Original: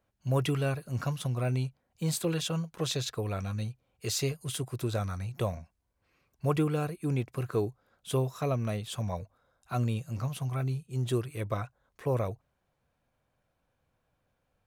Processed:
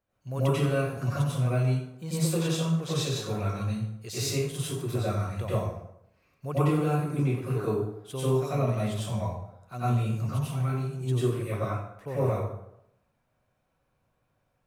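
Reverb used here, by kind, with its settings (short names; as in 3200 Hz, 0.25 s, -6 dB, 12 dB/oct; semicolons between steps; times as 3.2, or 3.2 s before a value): plate-style reverb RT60 0.79 s, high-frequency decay 0.65×, pre-delay 80 ms, DRR -10 dB; gain -7.5 dB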